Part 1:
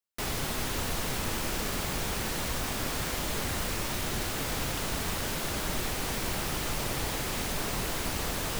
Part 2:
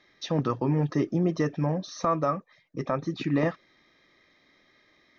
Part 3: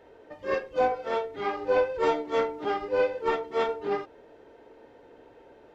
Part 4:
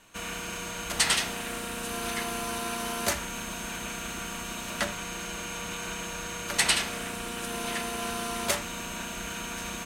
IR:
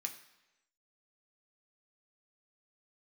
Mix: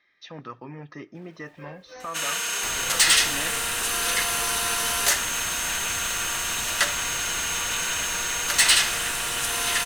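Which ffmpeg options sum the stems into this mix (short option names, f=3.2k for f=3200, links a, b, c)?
-filter_complex "[0:a]highshelf=f=8.9k:g=9,acrossover=split=170|2500[a][b][c];[a]acompressor=threshold=-36dB:ratio=4[d];[b]acompressor=threshold=-39dB:ratio=4[e];[c]acompressor=threshold=-42dB:ratio=4[f];[d][e][f]amix=inputs=3:normalize=0,adelay=2450,volume=-4.5dB[g];[1:a]volume=-16.5dB,asplit=2[h][i];[i]volume=-11.5dB[j];[2:a]acrusher=bits=8:mix=0:aa=0.000001,acrossover=split=400[k][l];[l]acompressor=threshold=-32dB:ratio=6[m];[k][m]amix=inputs=2:normalize=0,asoftclip=type=tanh:threshold=-28dB,adelay=1150,volume=-14.5dB[n];[3:a]bass=f=250:g=-13,treble=f=4k:g=14,bandreject=f=2.3k:w=9.2,asoftclip=type=tanh:threshold=-13.5dB,adelay=2000,volume=-3dB[o];[4:a]atrim=start_sample=2205[p];[j][p]afir=irnorm=-1:irlink=0[q];[g][h][n][o][q]amix=inputs=5:normalize=0,equalizer=f=2k:t=o:w=2.3:g=12.5"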